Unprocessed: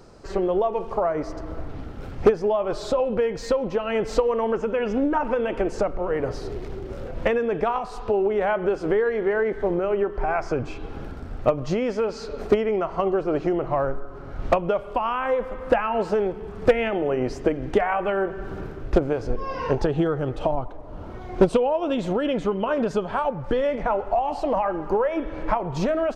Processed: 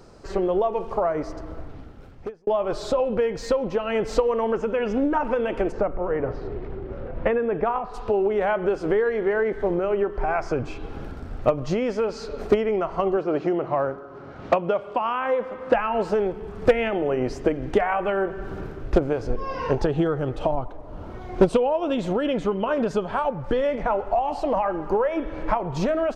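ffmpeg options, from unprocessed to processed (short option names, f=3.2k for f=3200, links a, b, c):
-filter_complex "[0:a]asplit=3[a][b][c];[a]afade=t=out:st=5.71:d=0.02[d];[b]lowpass=2.1k,afade=t=in:st=5.71:d=0.02,afade=t=out:st=7.93:d=0.02[e];[c]afade=t=in:st=7.93:d=0.02[f];[d][e][f]amix=inputs=3:normalize=0,asettb=1/sr,asplit=3[g][h][i];[g]atrim=end=13.174[j];[h]atrim=start=13.17:end=15.74,asetpts=PTS-STARTPTS,afade=t=in:d=0.004:c=qsin,afade=t=out:st=2.566:d=0.004:c=qsin,highpass=140,lowpass=6.3k[k];[i]atrim=start=15.736[l];[j][k]acrossfade=d=0.004:c1=hsin:c2=qsin[m];[m][l]acrossfade=d=0.004:c1=qsin:c2=hsin,asplit=2[n][o];[n]atrim=end=2.47,asetpts=PTS-STARTPTS,afade=t=out:st=1.15:d=1.32[p];[o]atrim=start=2.47,asetpts=PTS-STARTPTS,afade=t=in:d=0.004:c=hsin[q];[p][q]concat=n=2:v=0:a=1"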